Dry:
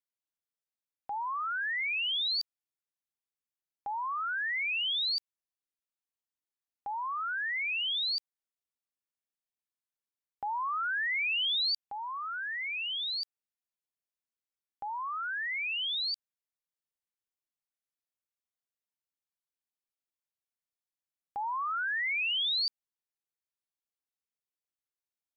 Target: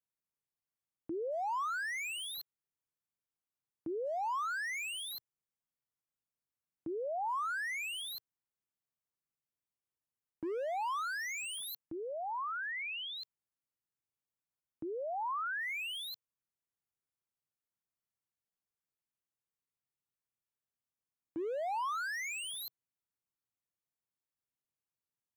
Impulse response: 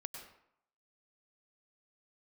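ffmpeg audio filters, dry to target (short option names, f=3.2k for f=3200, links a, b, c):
-af "afreqshift=-490,aeval=exprs='0.0282*(abs(mod(val(0)/0.0282+3,4)-2)-1)':c=same,equalizer=f=125:t=o:w=1:g=9,equalizer=f=1k:t=o:w=1:g=3,equalizer=f=4k:t=o:w=1:g=-6,volume=-3.5dB"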